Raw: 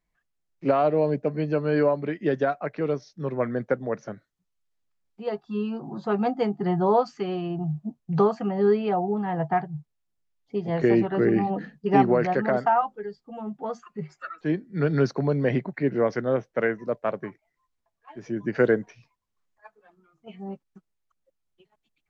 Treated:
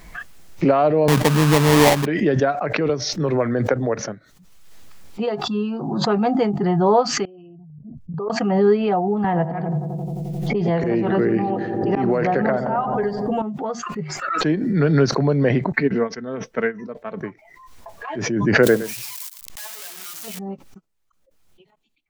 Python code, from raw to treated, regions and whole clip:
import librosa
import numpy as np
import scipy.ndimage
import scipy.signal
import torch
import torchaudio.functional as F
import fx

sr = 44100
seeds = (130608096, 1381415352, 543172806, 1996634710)

y = fx.chain(x, sr, fx.tilt_eq(slope=-2.5),
    fx.sample_hold(seeds[0], rate_hz=1400.0, jitter_pct=20), at=(1.08, 2.06))
y = fx.chain(y, sr, fx.peak_eq(hz=190.0, db=-13.0, octaves=0.27),
    fx.band_squash(depth_pct=70), at=(2.89, 4.0))
y = fx.chain(y, sr, fx.envelope_sharpen(power=2.0),
    fx.peak_eq(hz=350.0, db=-11.5, octaves=2.7),
    fx.level_steps(step_db=16), at=(7.25, 8.3))
y = fx.chain(y, sr, fx.auto_swell(attack_ms=313.0),
    fx.echo_filtered(ms=88, feedback_pct=73, hz=1100.0, wet_db=-11),
    fx.band_squash(depth_pct=100), at=(9.24, 13.42))
y = fx.chain(y, sr, fx.peak_eq(hz=600.0, db=-5.0, octaves=0.8),
    fx.comb(ms=4.5, depth=0.51),
    fx.upward_expand(threshold_db=-33.0, expansion=2.5), at=(15.72, 17.21))
y = fx.chain(y, sr, fx.crossing_spikes(level_db=-26.0),
    fx.echo_single(ms=113, db=-13.5), at=(18.63, 20.39))
y = fx.noise_reduce_blind(y, sr, reduce_db=8)
y = fx.pre_swell(y, sr, db_per_s=34.0)
y = y * librosa.db_to_amplitude(4.5)